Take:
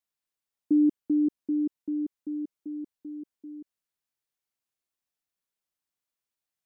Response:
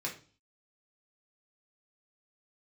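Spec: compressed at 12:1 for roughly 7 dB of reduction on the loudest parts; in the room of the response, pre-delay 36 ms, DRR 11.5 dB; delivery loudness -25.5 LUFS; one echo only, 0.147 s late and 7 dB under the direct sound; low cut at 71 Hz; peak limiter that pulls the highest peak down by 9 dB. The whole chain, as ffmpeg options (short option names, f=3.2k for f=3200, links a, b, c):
-filter_complex "[0:a]highpass=71,acompressor=threshold=-25dB:ratio=12,alimiter=level_in=3dB:limit=-24dB:level=0:latency=1,volume=-3dB,aecho=1:1:147:0.447,asplit=2[a][b];[1:a]atrim=start_sample=2205,adelay=36[c];[b][c]afir=irnorm=-1:irlink=0,volume=-14.5dB[d];[a][d]amix=inputs=2:normalize=0,volume=7.5dB"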